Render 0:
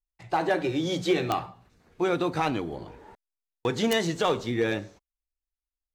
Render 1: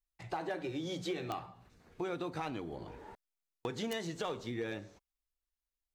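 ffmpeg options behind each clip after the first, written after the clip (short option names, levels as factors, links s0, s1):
-af "acompressor=threshold=0.0112:ratio=2.5,volume=0.841"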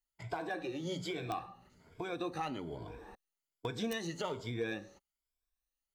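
-af "afftfilt=real='re*pow(10,12/40*sin(2*PI*(1.7*log(max(b,1)*sr/1024/100)/log(2)-(1.2)*(pts-256)/sr)))':imag='im*pow(10,12/40*sin(2*PI*(1.7*log(max(b,1)*sr/1024/100)/log(2)-(1.2)*(pts-256)/sr)))':win_size=1024:overlap=0.75,volume=0.841"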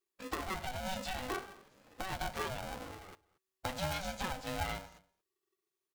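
-filter_complex "[0:a]asplit=2[s0][s1];[s1]adelay=227.4,volume=0.0708,highshelf=f=4000:g=-5.12[s2];[s0][s2]amix=inputs=2:normalize=0,aeval=exprs='val(0)*sgn(sin(2*PI*380*n/s))':c=same"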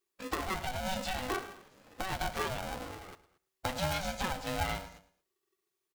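-af "aecho=1:1:109|218:0.141|0.0339,volume=1.5"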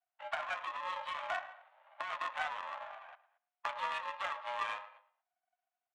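-af "highpass=f=260:t=q:w=0.5412,highpass=f=260:t=q:w=1.307,lowpass=f=3300:t=q:w=0.5176,lowpass=f=3300:t=q:w=0.7071,lowpass=f=3300:t=q:w=1.932,afreqshift=340,adynamicsmooth=sensitivity=4:basefreq=2400,volume=0.841"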